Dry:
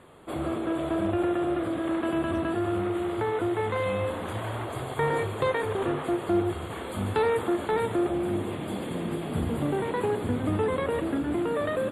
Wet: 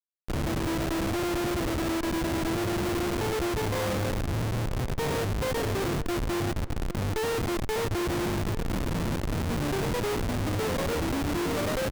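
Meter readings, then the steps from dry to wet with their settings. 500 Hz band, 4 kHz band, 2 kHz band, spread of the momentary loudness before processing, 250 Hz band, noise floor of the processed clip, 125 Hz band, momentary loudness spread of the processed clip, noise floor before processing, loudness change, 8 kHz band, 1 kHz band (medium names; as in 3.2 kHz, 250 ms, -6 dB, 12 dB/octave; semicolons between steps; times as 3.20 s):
-3.0 dB, +6.5 dB, +1.0 dB, 6 LU, -1.5 dB, -31 dBFS, +3.5 dB, 2 LU, -35 dBFS, -0.5 dB, +10.5 dB, -2.0 dB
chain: Schmitt trigger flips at -28 dBFS; echo from a far wall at 140 m, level -17 dB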